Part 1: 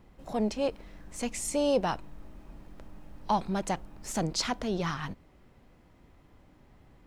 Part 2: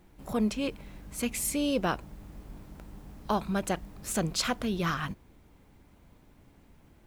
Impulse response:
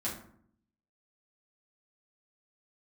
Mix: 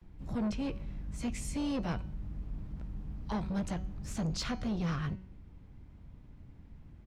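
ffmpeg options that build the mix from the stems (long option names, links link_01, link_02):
-filter_complex "[0:a]highpass=1100,equalizer=frequency=5200:width_type=o:width=0.77:gain=3,volume=-11dB[link_01];[1:a]lowpass=5100,bass=frequency=250:gain=14,treble=frequency=4000:gain=-5,asoftclip=type=tanh:threshold=-23.5dB,adelay=15,volume=-6dB[link_02];[link_01][link_02]amix=inputs=2:normalize=0,bandreject=frequency=187.2:width_type=h:width=4,bandreject=frequency=374.4:width_type=h:width=4,bandreject=frequency=561.6:width_type=h:width=4,bandreject=frequency=748.8:width_type=h:width=4,bandreject=frequency=936:width_type=h:width=4,bandreject=frequency=1123.2:width_type=h:width=4,bandreject=frequency=1310.4:width_type=h:width=4,bandreject=frequency=1497.6:width_type=h:width=4,bandreject=frequency=1684.8:width_type=h:width=4,bandreject=frequency=1872:width_type=h:width=4,bandreject=frequency=2059.2:width_type=h:width=4,bandreject=frequency=2246.4:width_type=h:width=4,bandreject=frequency=2433.6:width_type=h:width=4,bandreject=frequency=2620.8:width_type=h:width=4,bandreject=frequency=2808:width_type=h:width=4,bandreject=frequency=2995.2:width_type=h:width=4,bandreject=frequency=3182.4:width_type=h:width=4,bandreject=frequency=3369.6:width_type=h:width=4,bandreject=frequency=3556.8:width_type=h:width=4,bandreject=frequency=3744:width_type=h:width=4,bandreject=frequency=3931.2:width_type=h:width=4,bandreject=frequency=4118.4:width_type=h:width=4,bandreject=frequency=4305.6:width_type=h:width=4,bandreject=frequency=4492.8:width_type=h:width=4,bandreject=frequency=4680:width_type=h:width=4,bandreject=frequency=4867.2:width_type=h:width=4,bandreject=frequency=5054.4:width_type=h:width=4,bandreject=frequency=5241.6:width_type=h:width=4,bandreject=frequency=5428.8:width_type=h:width=4,bandreject=frequency=5616:width_type=h:width=4,bandreject=frequency=5803.2:width_type=h:width=4,bandreject=frequency=5990.4:width_type=h:width=4,bandreject=frequency=6177.6:width_type=h:width=4,bandreject=frequency=6364.8:width_type=h:width=4,bandreject=frequency=6552:width_type=h:width=4,bandreject=frequency=6739.2:width_type=h:width=4,bandreject=frequency=6926.4:width_type=h:width=4"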